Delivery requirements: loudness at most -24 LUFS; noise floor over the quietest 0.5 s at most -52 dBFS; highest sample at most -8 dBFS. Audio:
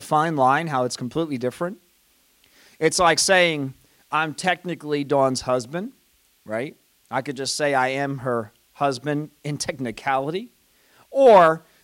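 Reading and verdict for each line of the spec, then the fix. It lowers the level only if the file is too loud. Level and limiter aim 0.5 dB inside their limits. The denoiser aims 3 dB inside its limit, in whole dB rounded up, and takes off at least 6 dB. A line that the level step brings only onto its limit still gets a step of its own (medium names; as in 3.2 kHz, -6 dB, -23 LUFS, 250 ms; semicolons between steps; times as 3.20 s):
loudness -21.5 LUFS: fail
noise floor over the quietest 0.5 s -61 dBFS: pass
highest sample -5.0 dBFS: fail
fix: trim -3 dB; peak limiter -8.5 dBFS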